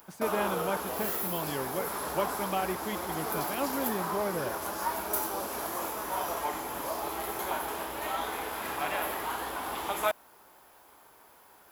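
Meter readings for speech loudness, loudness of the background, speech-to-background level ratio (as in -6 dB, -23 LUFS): -35.5 LUFS, -33.0 LUFS, -2.5 dB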